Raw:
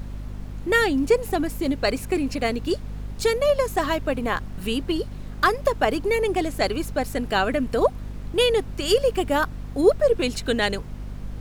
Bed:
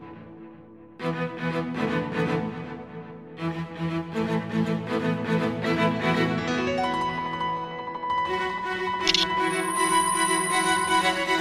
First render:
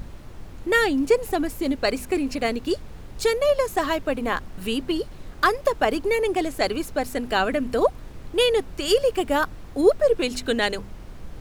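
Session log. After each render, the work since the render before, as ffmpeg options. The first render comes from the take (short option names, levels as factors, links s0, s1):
-af "bandreject=f=50:t=h:w=4,bandreject=f=100:t=h:w=4,bandreject=f=150:t=h:w=4,bandreject=f=200:t=h:w=4,bandreject=f=250:t=h:w=4"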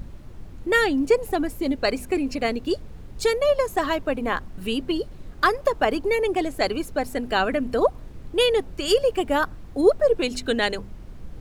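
-af "afftdn=nr=6:nf=-41"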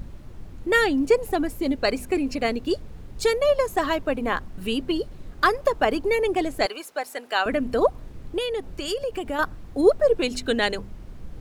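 -filter_complex "[0:a]asettb=1/sr,asplit=3[s0][s1][s2];[s0]atrim=end=6.664[s3];[s1]atrim=start=6.66:end=7.46,asetpts=PTS-STARTPTS,afade=t=in:d=0.004:c=qsin,afade=t=out:st=0.796:d=0.004:c=qsin,highpass=660[s4];[s2]atrim=start=7.456[s5];[s3][s4]acrossfade=d=0.004:c1=hsin:c2=qsin[s6];[s6][s5]acrossfade=d=0.004:c1=qsin:c2=hsin,asettb=1/sr,asplit=3[s7][s8][s9];[s7]atrim=end=8.384[s10];[s8]atrim=start=8.38:end=9.39,asetpts=PTS-STARTPTS,afade=t=in:d=0.004:c=qsin,afade=t=out:st=1.006:d=0.004:c=qsin,acompressor=threshold=0.0501:ratio=3:attack=3.2:release=140:knee=1:detection=peak[s11];[s9]atrim=start=9.386[s12];[s10][s11]acrossfade=d=0.004:c1=hsin:c2=qsin[s13];[s13][s12]acrossfade=d=0.004:c1=qsin:c2=hsin"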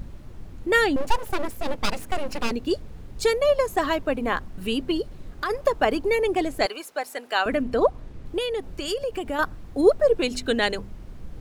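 -filter_complex "[0:a]asettb=1/sr,asplit=3[s0][s1][s2];[s0]atrim=end=0.964[s3];[s1]atrim=start=0.96:end=2.51,asetpts=PTS-STARTPTS,afade=t=in:d=0.004:c=qsin,afade=t=out:st=1.546:d=0.004:c=qsin,aeval=exprs='abs(val(0))':c=same[s4];[s2]atrim=start=2.506[s5];[s3][s4]acrossfade=d=0.004:c1=hsin:c2=qsin[s6];[s6][s5]acrossfade=d=0.004:c1=qsin:c2=hsin,asplit=3[s7][s8][s9];[s7]afade=t=out:st=5.01:d=0.02[s10];[s8]acompressor=threshold=0.0398:ratio=2.5:attack=3.2:release=140:knee=1:detection=peak,afade=t=in:st=5.01:d=0.02,afade=t=out:st=5.49:d=0.02[s11];[s9]afade=t=in:st=5.49:d=0.02[s12];[s10][s11][s12]amix=inputs=3:normalize=0,asettb=1/sr,asplit=3[s13][s14][s15];[s13]atrim=end=7.624[s16];[s14]atrim=start=7.62:end=8.26,asetpts=PTS-STARTPTS,afade=t=in:d=0.004:c=qsin,afade=t=out:st=0.636:d=0.004:c=qsin,highshelf=f=8600:g=-10.5[s17];[s15]atrim=start=8.256[s18];[s16][s17]acrossfade=d=0.004:c1=hsin:c2=qsin[s19];[s19][s18]acrossfade=d=0.004:c1=qsin:c2=hsin"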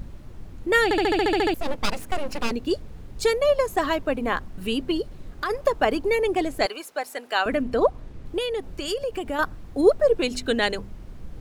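-filter_complex "[0:a]asplit=11[s0][s1][s2][s3][s4][s5][s6][s7][s8][s9][s10];[s0]atrim=end=0.912[s11];[s1]atrim=start=0.838:end=0.912[s12];[s2]atrim=start=0.838:end=0.912[s13];[s3]atrim=start=0.838:end=0.912[s14];[s4]atrim=start=0.838:end=0.912[s15];[s5]atrim=start=0.838:end=0.912[s16];[s6]atrim=start=0.838:end=0.912[s17];[s7]atrim=start=0.838:end=0.912[s18];[s8]atrim=start=0.838:end=0.912[s19];[s9]atrim=start=0.838:end=0.912[s20];[s10]atrim=start=1.538[s21];[s11][s12]acrossfade=d=0.004:c1=hsin:c2=hsin[s22];[s22][s13]acrossfade=d=0.004:c1=hsin:c2=hsin[s23];[s23][s14]acrossfade=d=0.004:c1=hsin:c2=hsin[s24];[s24][s15]acrossfade=d=0.004:c1=hsin:c2=hsin[s25];[s25][s16]acrossfade=d=0.004:c1=hsin:c2=hsin[s26];[s26][s17]acrossfade=d=0.004:c1=hsin:c2=hsin[s27];[s27][s18]acrossfade=d=0.004:c1=hsin:c2=hsin[s28];[s28][s19]acrossfade=d=0.004:c1=hsin:c2=hsin[s29];[s29][s20]acrossfade=d=0.004:c1=hsin:c2=hsin[s30];[s30][s21]acrossfade=d=0.004:c1=hsin:c2=hsin"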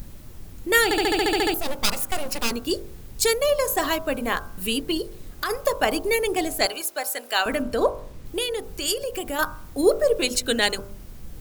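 -af "aemphasis=mode=production:type=75fm,bandreject=f=49.39:t=h:w=4,bandreject=f=98.78:t=h:w=4,bandreject=f=148.17:t=h:w=4,bandreject=f=197.56:t=h:w=4,bandreject=f=246.95:t=h:w=4,bandreject=f=296.34:t=h:w=4,bandreject=f=345.73:t=h:w=4,bandreject=f=395.12:t=h:w=4,bandreject=f=444.51:t=h:w=4,bandreject=f=493.9:t=h:w=4,bandreject=f=543.29:t=h:w=4,bandreject=f=592.68:t=h:w=4,bandreject=f=642.07:t=h:w=4,bandreject=f=691.46:t=h:w=4,bandreject=f=740.85:t=h:w=4,bandreject=f=790.24:t=h:w=4,bandreject=f=839.63:t=h:w=4,bandreject=f=889.02:t=h:w=4,bandreject=f=938.41:t=h:w=4,bandreject=f=987.8:t=h:w=4,bandreject=f=1037.19:t=h:w=4,bandreject=f=1086.58:t=h:w=4,bandreject=f=1135.97:t=h:w=4,bandreject=f=1185.36:t=h:w=4,bandreject=f=1234.75:t=h:w=4,bandreject=f=1284.14:t=h:w=4,bandreject=f=1333.53:t=h:w=4,bandreject=f=1382.92:t=h:w=4,bandreject=f=1432.31:t=h:w=4,bandreject=f=1481.7:t=h:w=4,bandreject=f=1531.09:t=h:w=4,bandreject=f=1580.48:t=h:w=4"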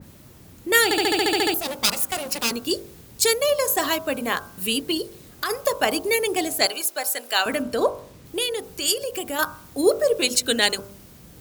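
-af "highpass=100,adynamicequalizer=threshold=0.0158:dfrequency=2600:dqfactor=0.7:tfrequency=2600:tqfactor=0.7:attack=5:release=100:ratio=0.375:range=2:mode=boostabove:tftype=highshelf"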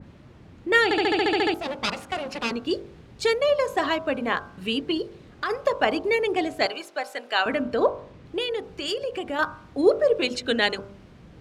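-af "lowpass=2800"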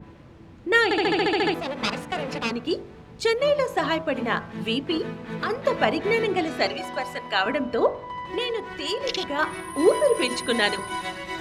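-filter_complex "[1:a]volume=0.355[s0];[0:a][s0]amix=inputs=2:normalize=0"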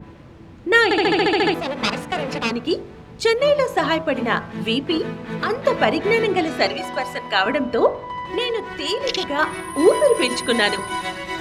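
-af "volume=1.68,alimiter=limit=0.708:level=0:latency=1"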